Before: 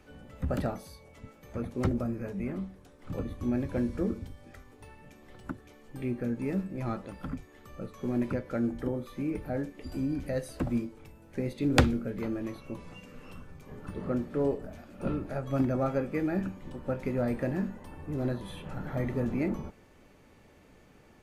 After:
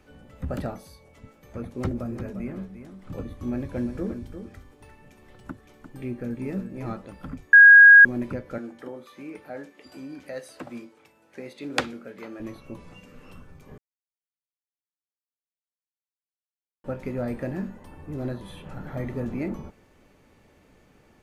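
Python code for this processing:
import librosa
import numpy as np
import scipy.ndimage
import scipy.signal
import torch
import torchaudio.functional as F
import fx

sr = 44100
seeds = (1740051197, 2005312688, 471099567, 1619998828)

y = fx.echo_single(x, sr, ms=349, db=-9.5, at=(1.95, 6.92), fade=0.02)
y = fx.weighting(y, sr, curve='A', at=(8.58, 12.4))
y = fx.edit(y, sr, fx.bleep(start_s=7.53, length_s=0.52, hz=1640.0, db=-6.5),
    fx.silence(start_s=13.78, length_s=3.06), tone=tone)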